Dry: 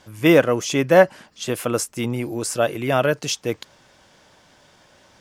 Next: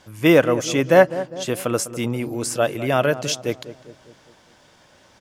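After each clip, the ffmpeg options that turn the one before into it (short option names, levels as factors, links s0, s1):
-filter_complex "[0:a]asplit=2[s0][s1];[s1]adelay=202,lowpass=f=1100:p=1,volume=0.224,asplit=2[s2][s3];[s3]adelay=202,lowpass=f=1100:p=1,volume=0.55,asplit=2[s4][s5];[s5]adelay=202,lowpass=f=1100:p=1,volume=0.55,asplit=2[s6][s7];[s7]adelay=202,lowpass=f=1100:p=1,volume=0.55,asplit=2[s8][s9];[s9]adelay=202,lowpass=f=1100:p=1,volume=0.55,asplit=2[s10][s11];[s11]adelay=202,lowpass=f=1100:p=1,volume=0.55[s12];[s0][s2][s4][s6][s8][s10][s12]amix=inputs=7:normalize=0"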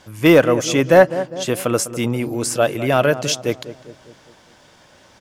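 -af "asoftclip=type=tanh:threshold=0.668,volume=1.5"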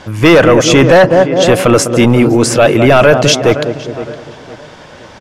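-filter_complex "[0:a]aemphasis=mode=reproduction:type=50fm,asplit=2[s0][s1];[s1]adelay=513,lowpass=f=2600:p=1,volume=0.133,asplit=2[s2][s3];[s3]adelay=513,lowpass=f=2600:p=1,volume=0.34,asplit=2[s4][s5];[s5]adelay=513,lowpass=f=2600:p=1,volume=0.34[s6];[s0][s2][s4][s6]amix=inputs=4:normalize=0,apsyclip=7.08,volume=0.841"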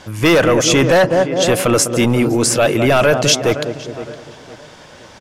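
-af "aemphasis=mode=production:type=cd,volume=0.501"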